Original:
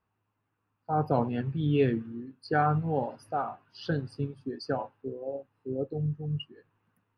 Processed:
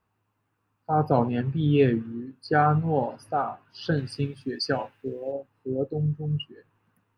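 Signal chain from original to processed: 3.97–5.32 s: resonant high shelf 1.5 kHz +8.5 dB, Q 1.5; trim +4.5 dB

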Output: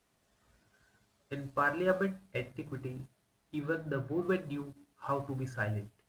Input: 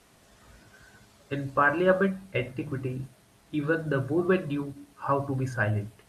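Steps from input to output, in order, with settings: companding laws mixed up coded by A; 3.58–4.21 s: peaking EQ 8.5 kHz -3 dB -> -10.5 dB 1.9 oct; trim -7 dB

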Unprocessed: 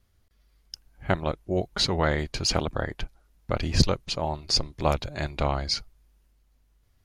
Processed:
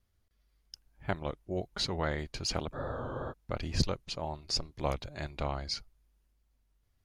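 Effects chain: spectral freeze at 2.76 s, 0.55 s; warped record 33 1/3 rpm, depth 100 cents; trim -8.5 dB

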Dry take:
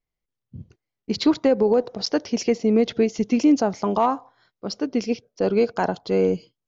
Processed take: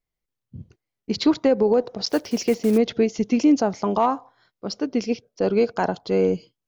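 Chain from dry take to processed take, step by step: 2.08–2.78 s: block-companded coder 5-bit

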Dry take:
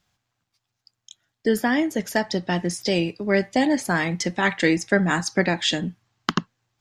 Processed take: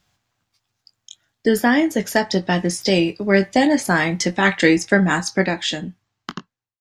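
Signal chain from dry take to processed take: fade out at the end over 2.04 s; doubling 21 ms -10.5 dB; trim +4.5 dB

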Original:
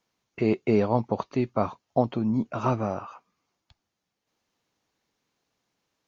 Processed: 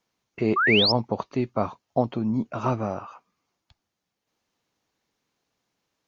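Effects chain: painted sound rise, 0.56–0.92 s, 1.1–5.5 kHz -21 dBFS

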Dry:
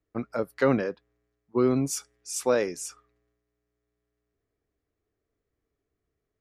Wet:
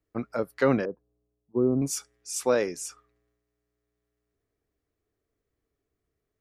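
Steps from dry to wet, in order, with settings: 0.85–1.82 s: Bessel low-pass 600 Hz, order 4

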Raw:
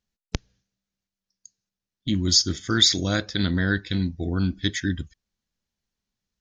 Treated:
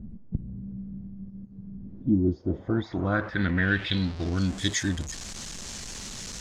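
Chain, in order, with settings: jump at every zero crossing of -29 dBFS; low-pass sweep 200 Hz -> 7.5 kHz, 1.77–4.54 s; trim -4 dB

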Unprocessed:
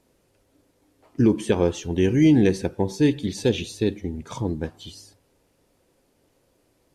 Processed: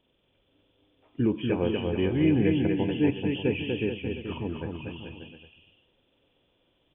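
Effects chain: knee-point frequency compression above 2.3 kHz 4:1; bouncing-ball echo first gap 240 ms, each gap 0.8×, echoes 5; trim -7 dB

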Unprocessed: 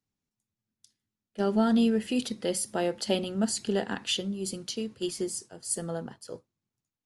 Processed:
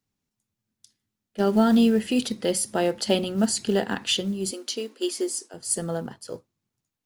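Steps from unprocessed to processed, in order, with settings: short-mantissa float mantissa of 4-bit; 4.51–5.54 s: brick-wall FIR high-pass 230 Hz; trim +5 dB

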